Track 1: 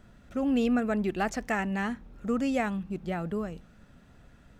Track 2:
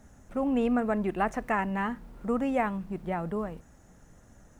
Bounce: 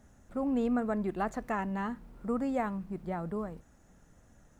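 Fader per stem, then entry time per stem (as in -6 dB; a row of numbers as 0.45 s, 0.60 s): -15.0 dB, -5.5 dB; 0.00 s, 0.00 s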